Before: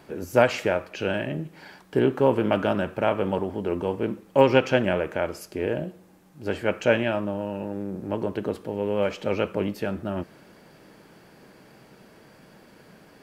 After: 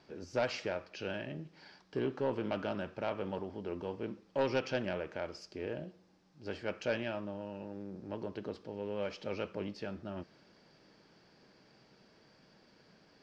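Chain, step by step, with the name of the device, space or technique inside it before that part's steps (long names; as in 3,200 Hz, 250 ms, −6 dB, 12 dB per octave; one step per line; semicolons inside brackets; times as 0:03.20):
overdriven synthesiser ladder filter (soft clipping −9.5 dBFS, distortion −18 dB; transistor ladder low-pass 5,800 Hz, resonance 55%)
level −2.5 dB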